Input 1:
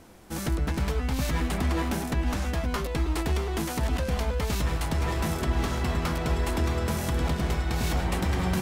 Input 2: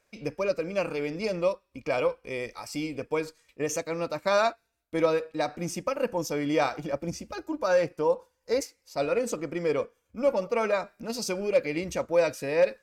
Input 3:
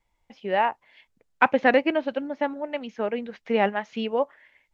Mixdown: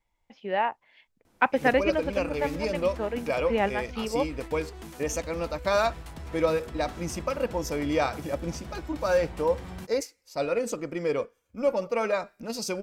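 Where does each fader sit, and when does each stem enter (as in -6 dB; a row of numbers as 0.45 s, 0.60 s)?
-13.5 dB, -0.5 dB, -3.5 dB; 1.25 s, 1.40 s, 0.00 s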